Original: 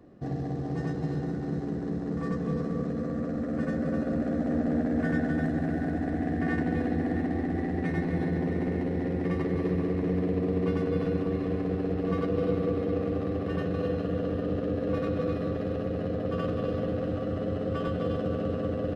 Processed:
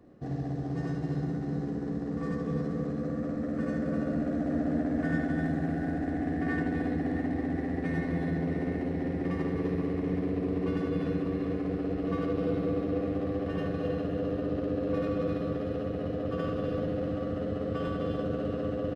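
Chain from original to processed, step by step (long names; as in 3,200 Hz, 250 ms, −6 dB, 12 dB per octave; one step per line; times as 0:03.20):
ambience of single reflections 54 ms −10.5 dB, 74 ms −6 dB
level −3 dB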